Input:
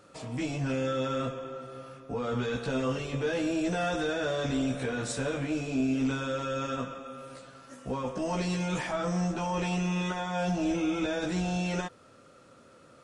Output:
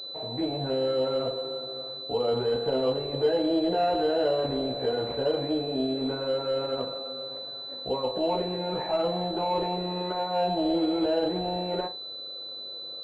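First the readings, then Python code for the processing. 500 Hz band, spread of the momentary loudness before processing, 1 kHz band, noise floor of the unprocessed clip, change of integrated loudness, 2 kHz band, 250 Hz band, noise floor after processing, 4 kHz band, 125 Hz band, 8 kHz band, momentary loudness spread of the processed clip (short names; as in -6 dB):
+7.0 dB, 11 LU, +4.5 dB, -56 dBFS, +3.0 dB, -7.5 dB, 0.0 dB, -39 dBFS, +10.0 dB, -5.0 dB, under -20 dB, 10 LU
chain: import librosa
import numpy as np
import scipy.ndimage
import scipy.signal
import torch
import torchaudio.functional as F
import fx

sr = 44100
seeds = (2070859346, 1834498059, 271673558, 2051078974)

y = fx.band_shelf(x, sr, hz=550.0, db=11.5, octaves=1.7)
y = fx.room_flutter(y, sr, wall_m=7.3, rt60_s=0.23)
y = fx.pwm(y, sr, carrier_hz=4000.0)
y = y * 10.0 ** (-4.5 / 20.0)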